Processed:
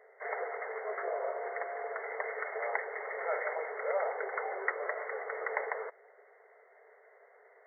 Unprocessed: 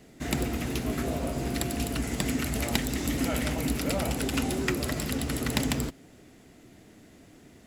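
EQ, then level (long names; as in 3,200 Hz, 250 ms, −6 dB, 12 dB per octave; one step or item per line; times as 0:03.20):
linear-phase brick-wall band-pass 400–2,200 Hz
+1.0 dB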